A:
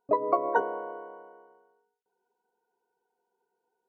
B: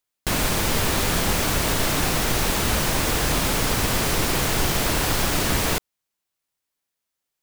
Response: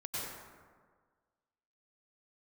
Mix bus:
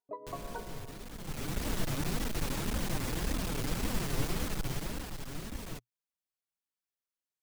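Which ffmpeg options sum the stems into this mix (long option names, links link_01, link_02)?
-filter_complex "[0:a]volume=-17.5dB[link_01];[1:a]acrossover=split=350[link_02][link_03];[link_03]acompressor=threshold=-29dB:ratio=10[link_04];[link_02][link_04]amix=inputs=2:normalize=0,flanger=delay=3.4:depth=4.6:regen=7:speed=1.8:shape=triangular,aeval=exprs='clip(val(0),-1,0.0376)':channel_layout=same,volume=-3.5dB,afade=type=in:start_time=1.17:duration=0.52:silence=0.266073,afade=type=out:start_time=4.4:duration=0.73:silence=0.398107[link_05];[link_01][link_05]amix=inputs=2:normalize=0,equalizer=frequency=120:width=6.4:gain=2.5"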